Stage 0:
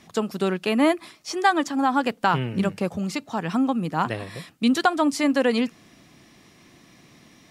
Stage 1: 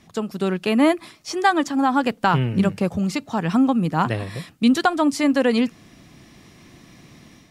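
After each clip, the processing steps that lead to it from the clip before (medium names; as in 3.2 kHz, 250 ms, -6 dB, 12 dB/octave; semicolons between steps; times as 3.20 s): bass shelf 150 Hz +9 dB; level rider gain up to 6 dB; trim -3 dB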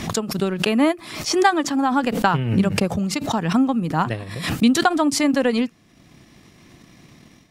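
transient shaper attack +4 dB, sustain -6 dB; swell ahead of each attack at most 65 dB/s; trim -2 dB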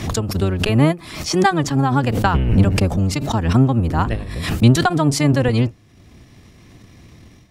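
octave divider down 1 oct, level +4 dB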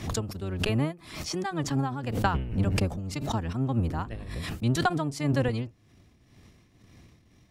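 tremolo triangle 1.9 Hz, depth 75%; trim -7.5 dB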